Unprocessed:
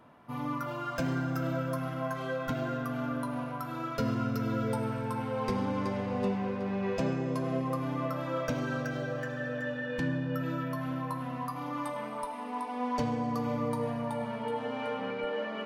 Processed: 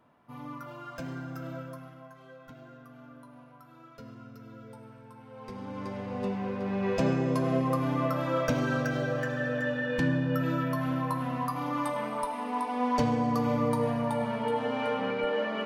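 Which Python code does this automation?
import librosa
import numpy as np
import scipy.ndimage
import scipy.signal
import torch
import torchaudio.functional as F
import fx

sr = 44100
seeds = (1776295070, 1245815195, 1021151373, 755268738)

y = fx.gain(x, sr, db=fx.line((1.59, -7.0), (2.1, -16.5), (5.21, -16.5), (5.84, -5.0), (7.1, 4.5)))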